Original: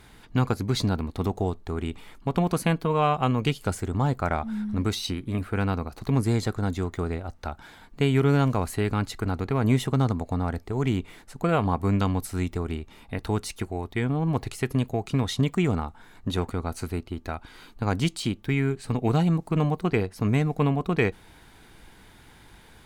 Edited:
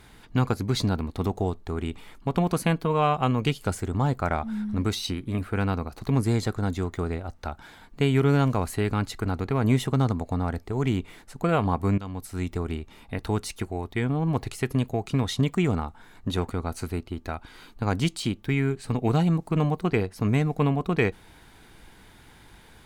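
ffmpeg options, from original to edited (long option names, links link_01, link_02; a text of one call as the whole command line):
ffmpeg -i in.wav -filter_complex "[0:a]asplit=2[link_01][link_02];[link_01]atrim=end=11.98,asetpts=PTS-STARTPTS,afade=type=out:start_time=11.976:duration=0.004:curve=hsin:silence=0.149624[link_03];[link_02]atrim=start=11.98,asetpts=PTS-STARTPTS,afade=type=in:duration=0.59:silence=0.149624[link_04];[link_03][link_04]concat=n=2:v=0:a=1" out.wav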